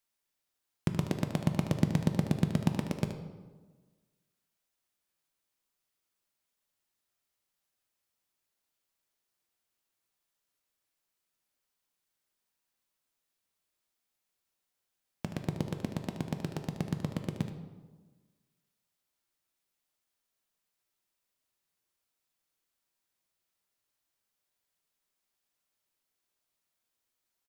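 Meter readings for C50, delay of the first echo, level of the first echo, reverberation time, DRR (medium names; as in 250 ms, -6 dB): 6.5 dB, 75 ms, -10.5 dB, 1.3 s, 5.0 dB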